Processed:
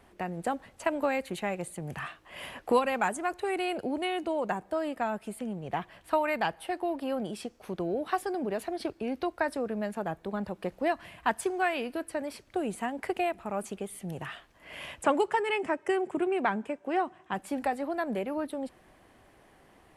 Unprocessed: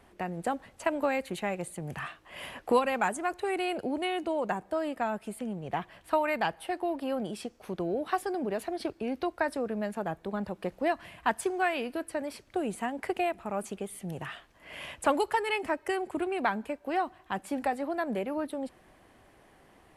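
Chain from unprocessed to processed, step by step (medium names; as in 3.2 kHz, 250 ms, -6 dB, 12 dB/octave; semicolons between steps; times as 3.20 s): 15.03–17.34 s: cabinet simulation 110–9000 Hz, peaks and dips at 170 Hz +8 dB, 380 Hz +4 dB, 4.3 kHz -9 dB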